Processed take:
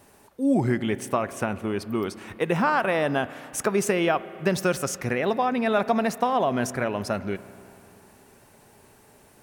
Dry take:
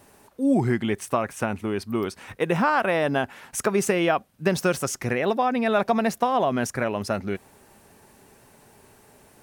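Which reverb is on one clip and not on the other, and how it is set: spring tank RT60 3.1 s, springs 32/48 ms, chirp 20 ms, DRR 15.5 dB; trim -1 dB

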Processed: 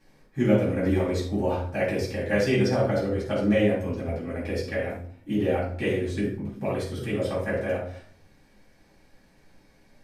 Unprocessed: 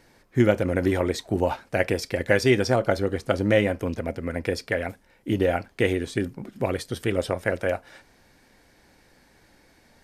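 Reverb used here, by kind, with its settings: simulated room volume 590 m³, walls furnished, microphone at 8.6 m; trim -14.5 dB

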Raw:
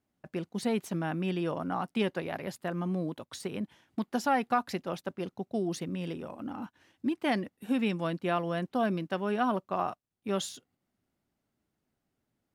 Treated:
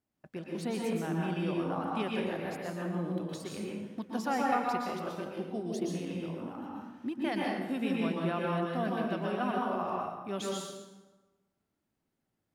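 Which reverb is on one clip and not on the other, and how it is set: plate-style reverb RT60 1.2 s, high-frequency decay 0.7×, pre-delay 105 ms, DRR -3 dB; trim -6 dB

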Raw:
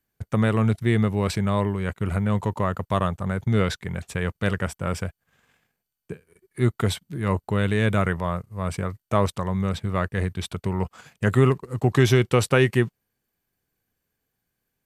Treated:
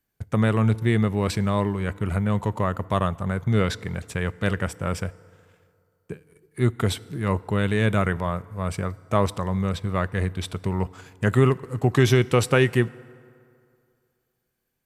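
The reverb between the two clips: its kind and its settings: FDN reverb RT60 2.4 s, low-frequency decay 0.9×, high-frequency decay 0.6×, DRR 19.5 dB

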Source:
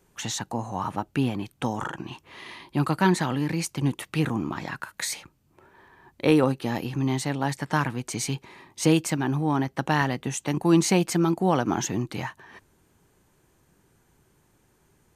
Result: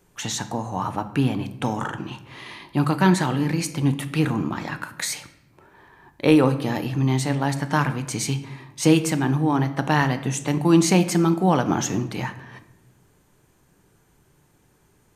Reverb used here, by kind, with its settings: simulated room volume 320 m³, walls mixed, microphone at 0.39 m; trim +2.5 dB

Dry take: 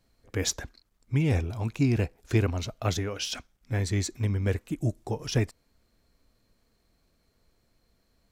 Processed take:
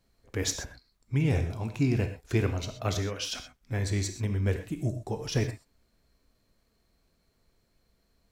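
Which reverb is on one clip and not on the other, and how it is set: gated-style reverb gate 150 ms flat, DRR 7 dB; trim -2 dB

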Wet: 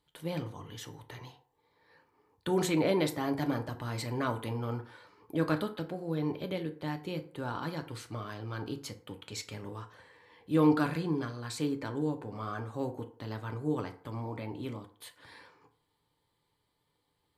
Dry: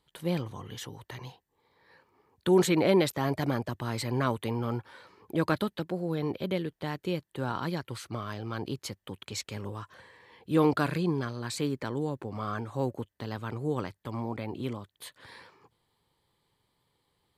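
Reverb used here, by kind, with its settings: FDN reverb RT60 0.5 s, low-frequency decay 0.8×, high-frequency decay 0.55×, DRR 5.5 dB; trim -4.5 dB

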